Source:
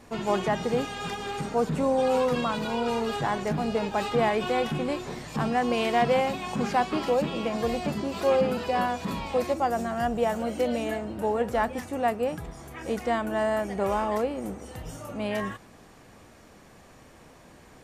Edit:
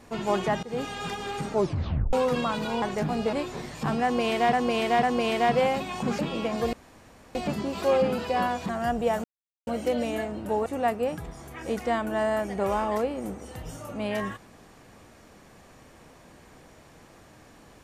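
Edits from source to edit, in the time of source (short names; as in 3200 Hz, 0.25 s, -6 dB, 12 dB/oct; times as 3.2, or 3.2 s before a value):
0.63–0.88 fade in, from -19.5 dB
1.52 tape stop 0.61 s
2.82–3.31 cut
3.82–4.86 cut
5.56–6.06 loop, 3 plays
6.72–7.2 cut
7.74 insert room tone 0.62 s
9.08–9.85 cut
10.4 insert silence 0.43 s
11.39–11.86 cut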